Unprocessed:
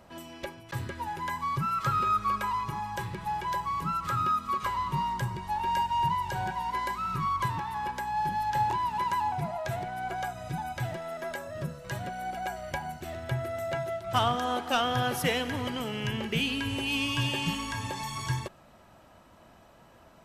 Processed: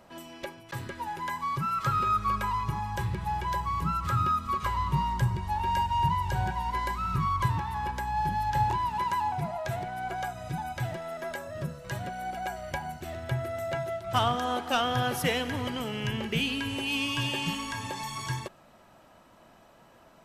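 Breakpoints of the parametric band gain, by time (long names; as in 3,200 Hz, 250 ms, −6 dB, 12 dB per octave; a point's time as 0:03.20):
parametric band 65 Hz 1.7 octaves
0:01.49 −7 dB
0:01.82 +1.5 dB
0:02.39 +13.5 dB
0:08.64 +13.5 dB
0:09.13 +2 dB
0:16.37 +2 dB
0:16.78 −7 dB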